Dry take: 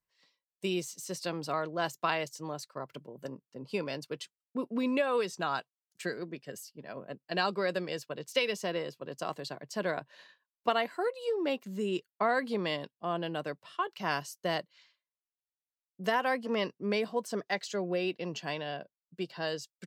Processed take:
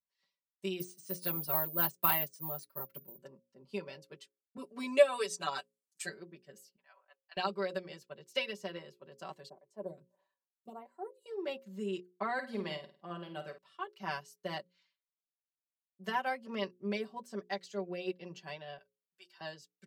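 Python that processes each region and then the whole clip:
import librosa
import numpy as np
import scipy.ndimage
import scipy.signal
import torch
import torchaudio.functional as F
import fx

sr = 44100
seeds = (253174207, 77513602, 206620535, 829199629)

y = fx.chain(x, sr, fx.low_shelf(hz=140.0, db=9.0),
    fx.resample_bad(factor=3, down='filtered', up='zero_stuff'), at=(0.8, 3.18))
y = fx.chain(y, sr, fx.highpass(hz=220.0, slope=12),
    fx.peak_eq(hz=8400.0, db=13.0, octaves=1.4),
    fx.comb(ms=6.9, depth=0.92), at=(4.57, 6.09))
y = fx.chain(y, sr, fx.highpass(hz=870.0, slope=24),
    fx.air_absorb(metres=130.0), at=(6.76, 7.37))
y = fx.chain(y, sr, fx.band_shelf(hz=2700.0, db=-16.0, octaves=2.4),
    fx.stagger_phaser(hz=1.6), at=(9.49, 11.26))
y = fx.chain(y, sr, fx.notch(hz=3500.0, q=23.0),
    fx.room_flutter(wall_m=8.8, rt60_s=0.39), at=(12.33, 13.58))
y = fx.chain(y, sr, fx.highpass(hz=1100.0, slope=12),
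    fx.peak_eq(hz=12000.0, db=6.0, octaves=1.8),
    fx.notch(hz=4100.0, q=7.8), at=(18.78, 19.41))
y = fx.hum_notches(y, sr, base_hz=60, count=9)
y = y + 0.87 * np.pad(y, (int(5.2 * sr / 1000.0), 0))[:len(y)]
y = fx.upward_expand(y, sr, threshold_db=-40.0, expansion=1.5)
y = y * librosa.db_to_amplitude(-2.5)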